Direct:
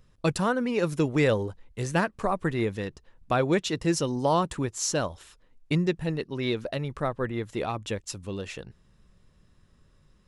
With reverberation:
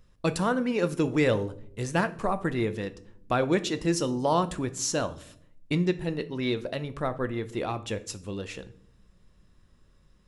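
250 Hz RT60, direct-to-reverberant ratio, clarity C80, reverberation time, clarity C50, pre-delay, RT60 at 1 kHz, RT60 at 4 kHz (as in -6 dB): 1.0 s, 11.0 dB, 21.0 dB, 0.65 s, 17.0 dB, 3 ms, 0.50 s, 0.40 s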